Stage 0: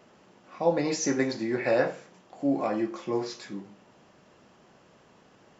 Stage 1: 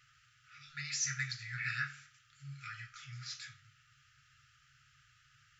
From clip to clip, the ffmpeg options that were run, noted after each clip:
-af "afftfilt=real='re*(1-between(b*sr/4096,150,1200))':imag='im*(1-between(b*sr/4096,150,1200))':win_size=4096:overlap=0.75,volume=0.75"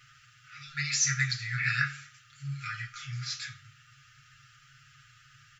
-af "aecho=1:1:7.3:0.65,volume=2.24"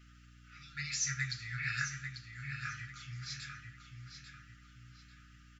-filter_complex "[0:a]asplit=2[s0][s1];[s1]adelay=843,lowpass=f=4800:p=1,volume=0.473,asplit=2[s2][s3];[s3]adelay=843,lowpass=f=4800:p=1,volume=0.38,asplit=2[s4][s5];[s5]adelay=843,lowpass=f=4800:p=1,volume=0.38,asplit=2[s6][s7];[s7]adelay=843,lowpass=f=4800:p=1,volume=0.38[s8];[s0][s2][s4][s6][s8]amix=inputs=5:normalize=0,aeval=exprs='val(0)+0.00316*(sin(2*PI*60*n/s)+sin(2*PI*2*60*n/s)/2+sin(2*PI*3*60*n/s)/3+sin(2*PI*4*60*n/s)/4+sin(2*PI*5*60*n/s)/5)':c=same,volume=0.398"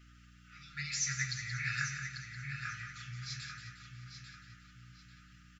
-af "aecho=1:1:178|356|534|712|890|1068:0.355|0.185|0.0959|0.0499|0.0259|0.0135"

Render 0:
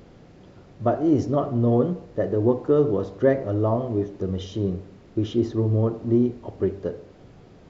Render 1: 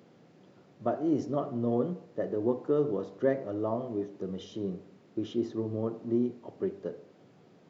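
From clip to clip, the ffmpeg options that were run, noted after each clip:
-af "highpass=f=140:w=0.5412,highpass=f=140:w=1.3066,volume=0.398"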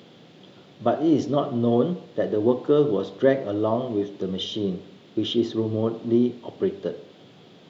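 -af "equalizer=f=3400:w=2:g=14,volume=2.51"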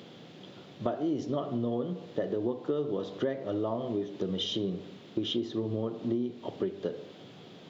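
-af "acompressor=threshold=0.0398:ratio=6"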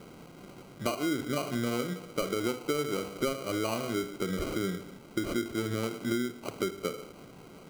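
-af "acrusher=samples=25:mix=1:aa=0.000001"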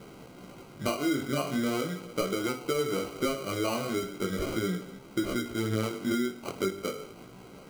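-af "flanger=delay=15:depth=6.8:speed=0.39,volume=1.68"

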